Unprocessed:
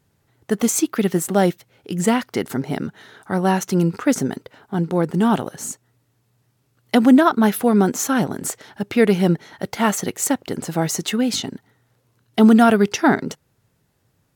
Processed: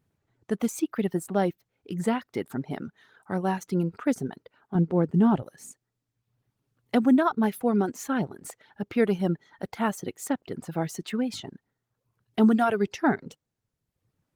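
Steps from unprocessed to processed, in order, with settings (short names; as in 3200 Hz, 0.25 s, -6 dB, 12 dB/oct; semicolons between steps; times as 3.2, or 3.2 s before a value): 4.75–5.43 tilt -2.5 dB/oct; reverb removal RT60 0.92 s; high shelf 3600 Hz -8 dB; gain -7 dB; Opus 24 kbps 48000 Hz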